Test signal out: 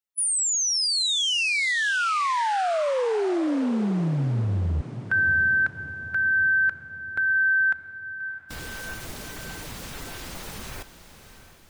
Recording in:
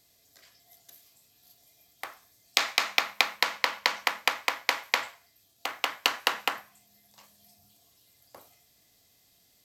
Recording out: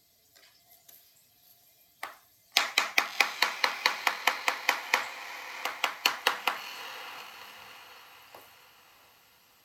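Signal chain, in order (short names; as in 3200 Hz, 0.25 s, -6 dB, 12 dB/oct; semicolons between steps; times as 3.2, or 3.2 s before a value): bin magnitudes rounded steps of 15 dB; diffused feedback echo 0.659 s, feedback 49%, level -12.5 dB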